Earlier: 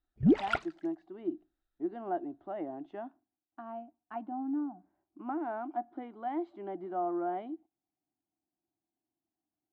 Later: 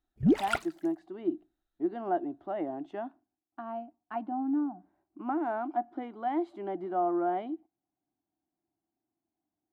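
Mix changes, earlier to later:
speech +4.0 dB
master: remove high-frequency loss of the air 130 metres

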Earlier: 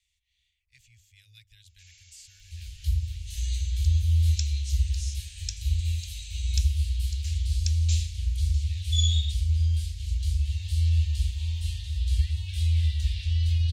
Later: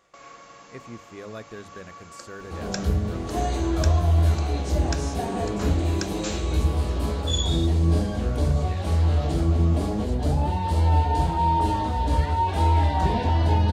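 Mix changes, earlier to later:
first sound: entry −1.65 s
master: remove inverse Chebyshev band-stop filter 190–1,200 Hz, stop band 50 dB

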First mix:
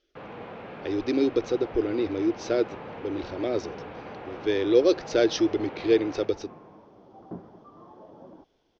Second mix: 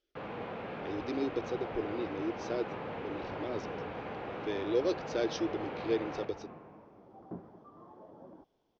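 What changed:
speech −10.5 dB
second sound −4.5 dB

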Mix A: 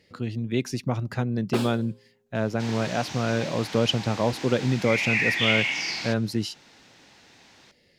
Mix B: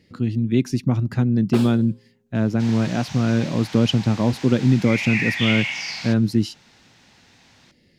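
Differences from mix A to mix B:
speech: add low shelf with overshoot 380 Hz +7 dB, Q 1.5
second sound: add parametric band 340 Hz −14 dB 0.63 octaves

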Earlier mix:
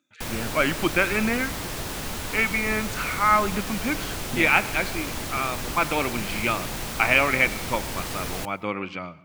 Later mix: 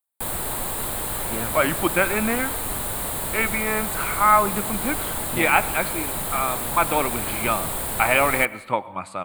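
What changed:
speech: entry +1.00 s
master: add drawn EQ curve 300 Hz 0 dB, 860 Hz +6 dB, 2,700 Hz −3 dB, 4,000 Hz +1 dB, 5,800 Hz −13 dB, 8,300 Hz +10 dB

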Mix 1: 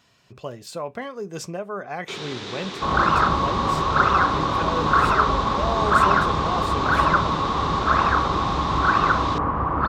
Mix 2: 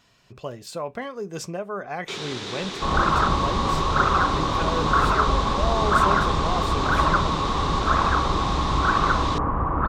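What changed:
first sound: remove high-frequency loss of the air 56 metres
second sound: add high-frequency loss of the air 420 metres
master: remove high-pass filter 61 Hz

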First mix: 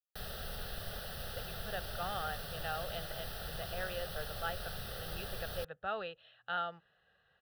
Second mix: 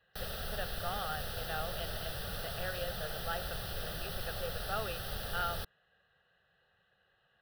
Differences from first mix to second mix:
speech: entry −1.15 s
background +3.0 dB

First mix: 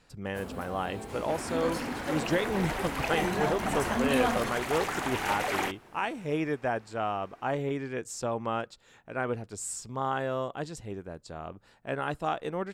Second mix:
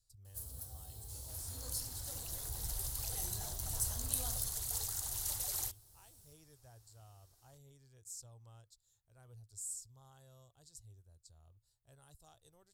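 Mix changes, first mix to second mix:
speech −12.0 dB
master: add drawn EQ curve 110 Hz 0 dB, 200 Hz −28 dB, 480 Hz −23 dB, 740 Hz −22 dB, 2,400 Hz −27 dB, 4,100 Hz −3 dB, 12,000 Hz +11 dB

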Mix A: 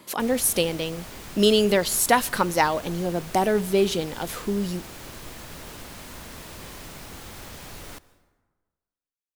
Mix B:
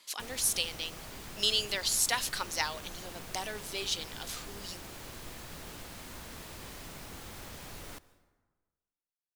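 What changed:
speech: add resonant band-pass 5,000 Hz, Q 1
background −5.0 dB

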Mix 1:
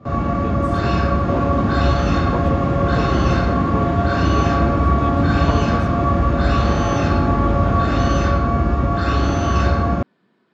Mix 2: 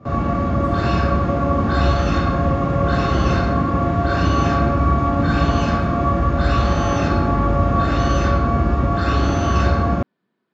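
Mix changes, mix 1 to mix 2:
speech −11.0 dB
second sound: send −9.5 dB

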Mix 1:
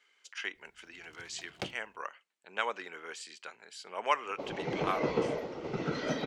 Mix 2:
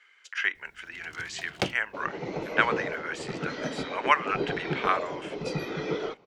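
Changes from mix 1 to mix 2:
speech: add parametric band 1,700 Hz +12.5 dB 1.5 octaves
first sound +10.5 dB
second sound: entry −2.45 s

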